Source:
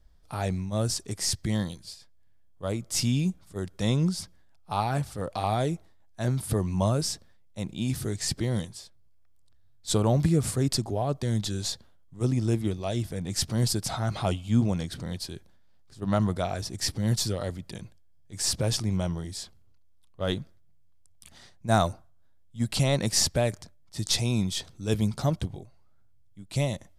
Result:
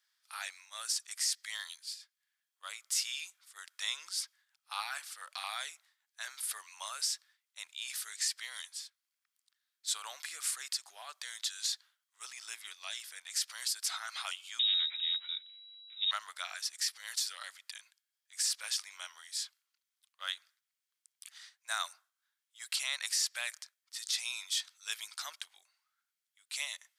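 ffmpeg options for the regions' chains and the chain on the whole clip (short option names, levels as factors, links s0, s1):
-filter_complex "[0:a]asettb=1/sr,asplit=3[s0][s1][s2];[s0]atrim=end=14.594[s3];[s1]atrim=start=14.59:end=16.11,asetpts=PTS-STARTPTS,afade=t=in:d=0.004:c=qsin,afade=t=out:st=1.516:d=0.004:c=qsin,asoftclip=type=hard:threshold=0.0422,lowpass=f=3300:t=q:w=0.5098,lowpass=f=3300:t=q:w=0.6013,lowpass=f=3300:t=q:w=0.9,lowpass=f=3300:t=q:w=2.563,afreqshift=-3900[s4];[s2]atrim=start=16.106[s5];[s3][s4]acrossfade=d=0.004:c1=hsin:c2=qsin[s6];[s6][s5]acrossfade=d=0.004:c1=qsin:c2=hsin,highpass=f=1400:w=0.5412,highpass=f=1400:w=1.3066,alimiter=limit=0.075:level=0:latency=1:release=125,volume=1.12"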